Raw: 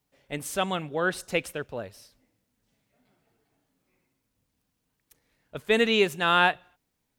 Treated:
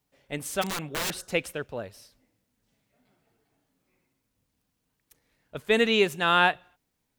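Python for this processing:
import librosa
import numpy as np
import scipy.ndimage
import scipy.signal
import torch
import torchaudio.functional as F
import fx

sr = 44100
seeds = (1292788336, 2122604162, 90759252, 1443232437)

y = fx.overflow_wrap(x, sr, gain_db=24.5, at=(0.61, 1.26), fade=0.02)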